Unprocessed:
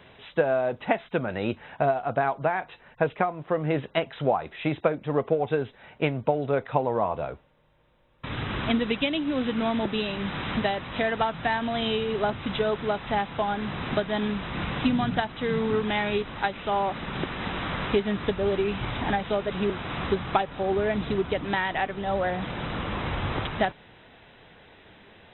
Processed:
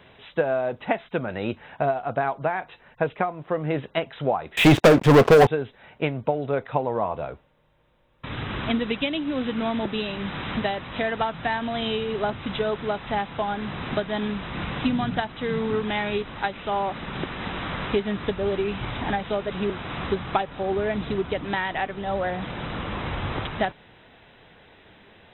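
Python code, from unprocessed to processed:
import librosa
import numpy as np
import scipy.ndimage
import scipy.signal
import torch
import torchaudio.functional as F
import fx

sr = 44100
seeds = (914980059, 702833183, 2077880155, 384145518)

y = fx.leveller(x, sr, passes=5, at=(4.57, 5.47))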